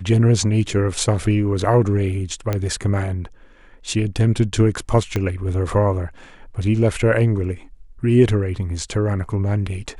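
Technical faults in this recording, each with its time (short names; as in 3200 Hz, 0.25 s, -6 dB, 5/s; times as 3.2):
2.53 pop -9 dBFS
5.16 pop -9 dBFS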